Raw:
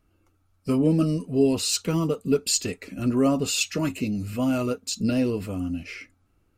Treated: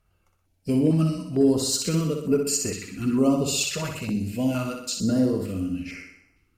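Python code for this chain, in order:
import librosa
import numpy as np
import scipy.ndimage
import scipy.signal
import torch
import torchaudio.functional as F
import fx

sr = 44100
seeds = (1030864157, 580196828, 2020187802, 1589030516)

y = fx.cheby_harmonics(x, sr, harmonics=(2, 3, 5, 7), levels_db=(-43, -30, -31, -39), full_scale_db=-10.0)
y = fx.room_flutter(y, sr, wall_m=10.7, rt60_s=0.72)
y = fx.filter_held_notch(y, sr, hz=2.2, low_hz=290.0, high_hz=3600.0)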